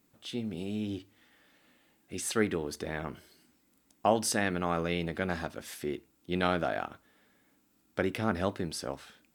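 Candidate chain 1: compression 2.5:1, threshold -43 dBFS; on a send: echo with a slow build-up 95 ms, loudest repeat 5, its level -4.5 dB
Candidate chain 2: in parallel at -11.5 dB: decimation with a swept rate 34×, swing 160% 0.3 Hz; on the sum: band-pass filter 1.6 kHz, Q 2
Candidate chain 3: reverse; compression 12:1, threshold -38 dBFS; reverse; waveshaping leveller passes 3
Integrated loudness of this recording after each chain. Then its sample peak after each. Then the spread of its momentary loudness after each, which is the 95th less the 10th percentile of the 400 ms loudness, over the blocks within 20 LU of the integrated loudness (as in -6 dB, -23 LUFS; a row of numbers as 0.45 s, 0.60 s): -39.0 LUFS, -40.5 LUFS, -35.5 LUFS; -21.0 dBFS, -18.0 dBFS, -25.0 dBFS; 6 LU, 17 LU, 7 LU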